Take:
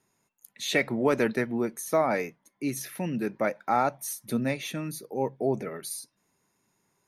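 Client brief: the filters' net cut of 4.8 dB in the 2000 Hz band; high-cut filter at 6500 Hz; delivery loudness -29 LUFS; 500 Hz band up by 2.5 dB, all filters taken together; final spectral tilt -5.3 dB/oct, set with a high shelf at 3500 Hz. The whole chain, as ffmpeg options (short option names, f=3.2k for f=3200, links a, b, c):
-af "lowpass=6.5k,equalizer=f=500:t=o:g=3.5,equalizer=f=2k:t=o:g=-5,highshelf=f=3.5k:g=-3,volume=-1dB"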